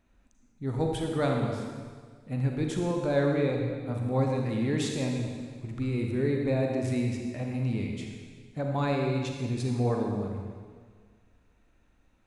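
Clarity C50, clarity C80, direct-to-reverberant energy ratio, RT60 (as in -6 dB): 2.0 dB, 3.5 dB, 1.0 dB, 1.7 s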